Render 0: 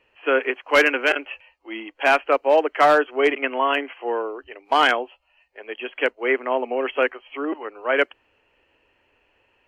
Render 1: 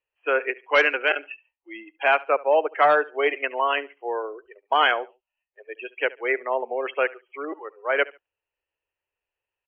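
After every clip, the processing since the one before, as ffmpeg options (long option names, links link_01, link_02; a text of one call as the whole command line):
ffmpeg -i in.wav -af "afftdn=noise_reduction=23:noise_floor=-29,equalizer=frequency=250:width_type=o:width=0.63:gain=-14.5,aecho=1:1:71|142:0.0891|0.0214,volume=-1.5dB" out.wav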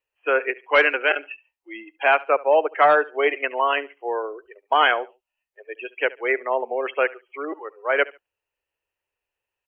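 ffmpeg -i in.wav -filter_complex "[0:a]acrossover=split=4100[link_01][link_02];[link_02]acompressor=threshold=-53dB:ratio=4:attack=1:release=60[link_03];[link_01][link_03]amix=inputs=2:normalize=0,volume=2dB" out.wav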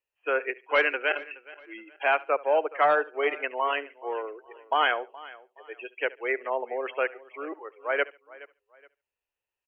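ffmpeg -i in.wav -af "aecho=1:1:421|842:0.1|0.031,volume=-6dB" out.wav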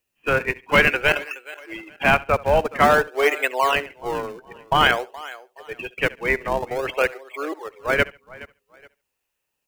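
ffmpeg -i in.wav -filter_complex "[0:a]highshelf=frequency=2800:gain=9.5,asplit=2[link_01][link_02];[link_02]acrusher=samples=38:mix=1:aa=0.000001:lfo=1:lforange=60.8:lforate=0.51,volume=-9dB[link_03];[link_01][link_03]amix=inputs=2:normalize=0,volume=4.5dB" out.wav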